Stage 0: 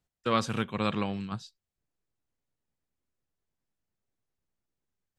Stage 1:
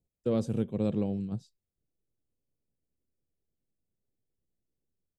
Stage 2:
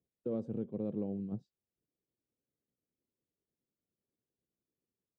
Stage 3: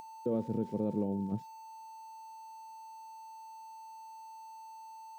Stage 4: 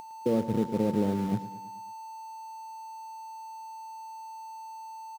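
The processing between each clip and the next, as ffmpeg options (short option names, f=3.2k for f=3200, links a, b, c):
-af "firequalizer=gain_entry='entry(490,0);entry(1100,-23);entry(8300,-9)':delay=0.05:min_phase=1,volume=2dB"
-af "alimiter=level_in=0.5dB:limit=-24dB:level=0:latency=1:release=396,volume=-0.5dB,bandpass=f=350:t=q:w=0.73:csg=0"
-af "aeval=exprs='val(0)+0.00282*sin(2*PI*890*n/s)':c=same,acompressor=mode=upward:threshold=-52dB:ratio=2.5,aeval=exprs='val(0)*gte(abs(val(0)),0.00106)':c=same,volume=4dB"
-filter_complex "[0:a]asplit=2[a][b];[b]acrusher=bits=5:mix=0:aa=0.000001,volume=-11.5dB[c];[a][c]amix=inputs=2:normalize=0,aecho=1:1:109|218|327|436|545:0.188|0.102|0.0549|0.0297|0.016,volume=4dB"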